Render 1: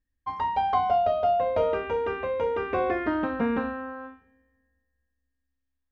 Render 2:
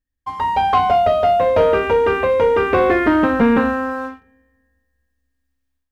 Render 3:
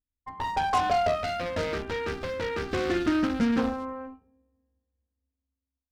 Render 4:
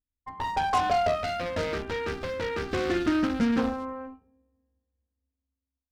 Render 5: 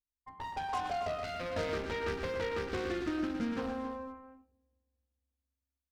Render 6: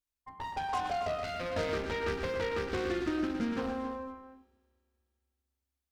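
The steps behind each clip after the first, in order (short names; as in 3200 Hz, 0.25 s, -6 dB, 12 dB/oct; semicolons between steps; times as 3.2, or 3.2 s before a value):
dynamic EQ 720 Hz, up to -5 dB, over -34 dBFS, Q 2.4; AGC gain up to 10 dB; sample leveller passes 1
Wiener smoothing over 25 samples; added harmonics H 8 -19 dB, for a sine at -6 dBFS; spectral gain 1.16–3.58, 370–1200 Hz -8 dB; gain -8.5 dB
nothing audible
vocal rider 0.5 s; on a send: loudspeakers at several distances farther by 42 m -9 dB, 94 m -11 dB; on the sum: gain -8.5 dB
reverb RT60 2.7 s, pre-delay 3 ms, DRR 21.5 dB; gain +2 dB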